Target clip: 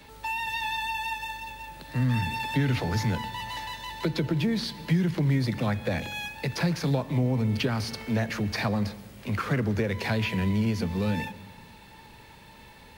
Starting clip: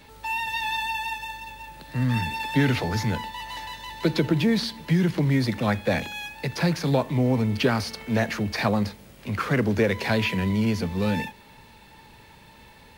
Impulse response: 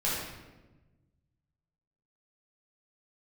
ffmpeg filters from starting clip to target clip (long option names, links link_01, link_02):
-filter_complex "[0:a]acrossover=split=160[link_01][link_02];[link_02]acompressor=threshold=-28dB:ratio=3[link_03];[link_01][link_03]amix=inputs=2:normalize=0,asplit=2[link_04][link_05];[1:a]atrim=start_sample=2205,asetrate=48510,aresample=44100,adelay=109[link_06];[link_05][link_06]afir=irnorm=-1:irlink=0,volume=-27dB[link_07];[link_04][link_07]amix=inputs=2:normalize=0"